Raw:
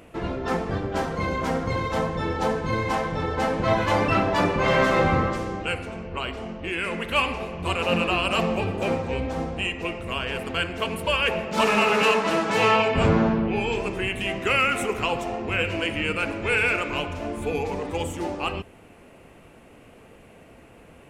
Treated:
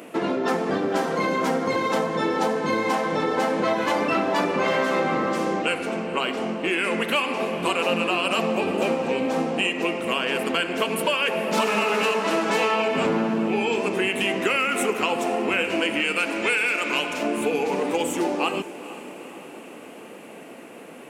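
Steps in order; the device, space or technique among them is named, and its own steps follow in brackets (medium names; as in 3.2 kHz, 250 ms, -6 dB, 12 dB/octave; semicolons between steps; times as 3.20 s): high-pass 220 Hz 24 dB/octave; 16.00–17.23 s: tilt shelf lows -4.5 dB, about 1.4 kHz; ASMR close-microphone chain (bass shelf 220 Hz +6.5 dB; compression, threshold -27 dBFS, peak gain reduction 12 dB; treble shelf 7.9 kHz +5.5 dB); echo that smears into a reverb 459 ms, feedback 62%, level -16 dB; trim +7 dB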